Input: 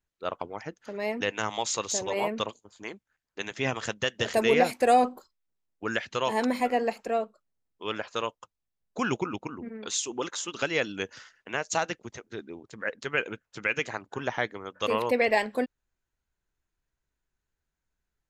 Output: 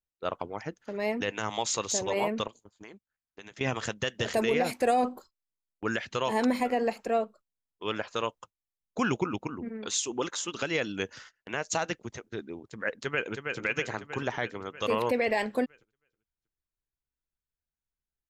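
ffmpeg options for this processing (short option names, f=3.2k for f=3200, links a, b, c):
-filter_complex "[0:a]asettb=1/sr,asplit=3[a][b][c];[a]atrim=end=2.474[d];[b]atrim=start=2.47:end=3.61,asetpts=PTS-STARTPTS,afade=t=in:d=0.004:c=qsin,afade=t=out:st=1.136:d=0.004:c=qsin,acompressor=threshold=-44dB:ratio=5:attack=3.2:release=140:knee=1:detection=peak[e];[c]atrim=start=3.606[f];[d][e]acrossfade=d=0.004:c1=hsin:c2=qsin[g];[g][f]acrossfade=d=0.004:c1=qsin:c2=hsin,asplit=2[h][i];[i]afade=t=in:st=12.95:d=0.01,afade=t=out:st=13.59:d=0.01,aecho=0:1:320|640|960|1280|1600|1920|2240|2560|2880:0.446684|0.290344|0.188724|0.12267|0.0797358|0.0518283|0.0336884|0.0218974|0.0142333[j];[h][j]amix=inputs=2:normalize=0,agate=range=-14dB:threshold=-51dB:ratio=16:detection=peak,lowshelf=f=240:g=4,alimiter=limit=-16.5dB:level=0:latency=1:release=51"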